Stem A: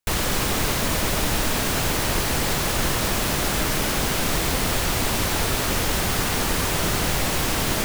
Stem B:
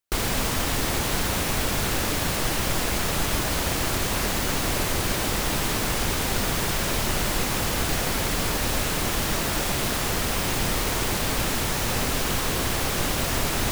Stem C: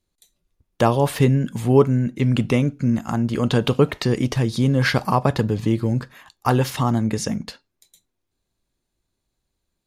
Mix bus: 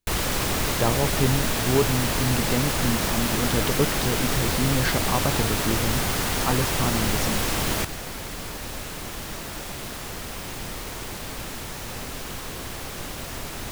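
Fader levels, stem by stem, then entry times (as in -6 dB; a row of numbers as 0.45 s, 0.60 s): -2.5 dB, -9.0 dB, -7.0 dB; 0.00 s, 0.00 s, 0.00 s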